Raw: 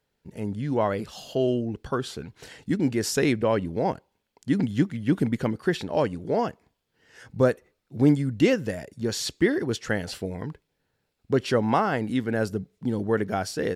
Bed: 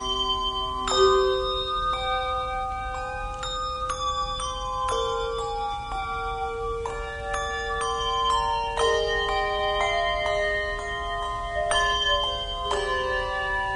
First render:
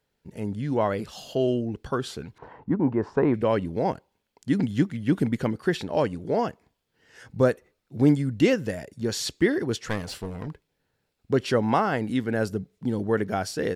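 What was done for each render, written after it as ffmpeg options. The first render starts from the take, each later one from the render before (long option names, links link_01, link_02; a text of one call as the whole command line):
ffmpeg -i in.wav -filter_complex "[0:a]asettb=1/sr,asplit=3[link_01][link_02][link_03];[link_01]atrim=end=2.384[link_04];[link_02]atrim=start=2.38:end=3.34,asetpts=PTS-STARTPTS,afade=type=in:duration=0.004:curve=qsin,afade=type=out:start_time=0.956:duration=0.004:curve=qsin,lowpass=frequency=1000:width_type=q:width=5.1[link_05];[link_03]atrim=start=3.336[link_06];[link_04][link_05]acrossfade=duration=0.004:curve1=hsin:curve2=qsin[link_07];[link_07][link_06]acrossfade=duration=0.004:curve1=qsin:curve2=hsin,asettb=1/sr,asplit=3[link_08][link_09][link_10];[link_08]atrim=end=9.874[link_11];[link_09]atrim=start=9.87:end=10.48,asetpts=PTS-STARTPTS,afade=type=in:duration=0.004:curve=qsin,afade=type=out:start_time=0.606:duration=0.004:curve=qsin,aeval=exprs='clip(val(0),-1,0.0224)':channel_layout=same[link_12];[link_10]atrim=start=10.476[link_13];[link_11][link_12]acrossfade=duration=0.004:curve1=hsin:curve2=qsin[link_14];[link_14][link_13]acrossfade=duration=0.004:curve1=qsin:curve2=hsin" out.wav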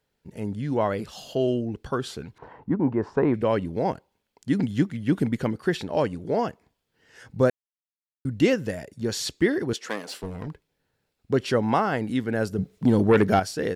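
ffmpeg -i in.wav -filter_complex "[0:a]asettb=1/sr,asplit=3[link_01][link_02][link_03];[link_01]atrim=end=9.734[link_04];[link_02]atrim=start=9.73:end=10.23,asetpts=PTS-STARTPTS,afade=type=in:duration=0.004:curve=qsin,afade=type=out:start_time=0.496:duration=0.004:curve=qsin,highpass=frequency=240:width=0.5412,highpass=frequency=240:width=1.3066[link_05];[link_03]atrim=start=10.226[link_06];[link_04][link_05]acrossfade=duration=0.004:curve1=hsin:curve2=qsin[link_07];[link_07][link_06]acrossfade=duration=0.004:curve1=qsin:curve2=hsin,asettb=1/sr,asplit=3[link_08][link_09][link_10];[link_08]atrim=end=12.584[link_11];[link_09]atrim=start=12.58:end=13.4,asetpts=PTS-STARTPTS,afade=type=in:duration=0.004:curve=qsin,afade=type=out:start_time=0.816:duration=0.004:curve=qsin,aeval=exprs='0.266*sin(PI/2*1.78*val(0)/0.266)':channel_layout=same[link_12];[link_10]atrim=start=13.396[link_13];[link_11][link_12]acrossfade=duration=0.004:curve1=hsin:curve2=qsin[link_14];[link_14][link_13]acrossfade=duration=0.004:curve1=qsin:curve2=hsin,asplit=3[link_15][link_16][link_17];[link_15]atrim=end=7.5,asetpts=PTS-STARTPTS,afade=type=out:start_time=7.496:duration=0.004:curve=hsin[link_18];[link_16]atrim=start=7.5:end=8.25,asetpts=PTS-STARTPTS,volume=0[link_19];[link_17]atrim=start=8.25,asetpts=PTS-STARTPTS,afade=type=in:duration=0.004:curve=hsin[link_20];[link_18][link_19][link_20]concat=n=3:v=0:a=1" out.wav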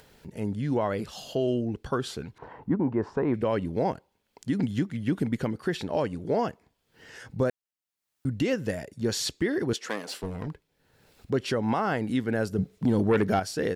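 ffmpeg -i in.wav -af "alimiter=limit=-16.5dB:level=0:latency=1:release=170,acompressor=mode=upward:threshold=-40dB:ratio=2.5" out.wav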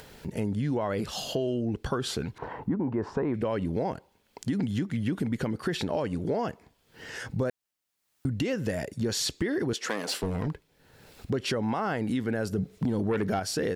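ffmpeg -i in.wav -filter_complex "[0:a]asplit=2[link_01][link_02];[link_02]alimiter=level_in=2.5dB:limit=-24dB:level=0:latency=1:release=18,volume=-2.5dB,volume=2dB[link_03];[link_01][link_03]amix=inputs=2:normalize=0,acompressor=threshold=-26dB:ratio=4" out.wav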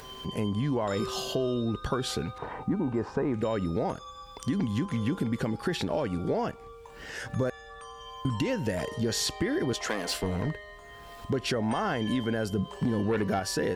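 ffmpeg -i in.wav -i bed.wav -filter_complex "[1:a]volume=-18dB[link_01];[0:a][link_01]amix=inputs=2:normalize=0" out.wav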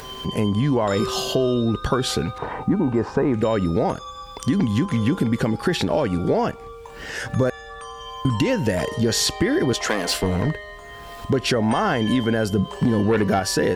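ffmpeg -i in.wav -af "volume=8.5dB" out.wav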